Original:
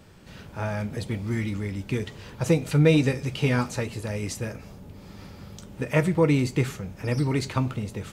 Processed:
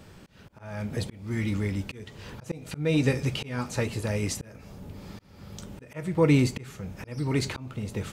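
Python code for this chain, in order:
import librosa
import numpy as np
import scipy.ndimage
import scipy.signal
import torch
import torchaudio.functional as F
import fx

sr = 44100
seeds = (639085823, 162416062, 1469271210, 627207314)

y = fx.auto_swell(x, sr, attack_ms=421.0)
y = F.gain(torch.from_numpy(y), 2.0).numpy()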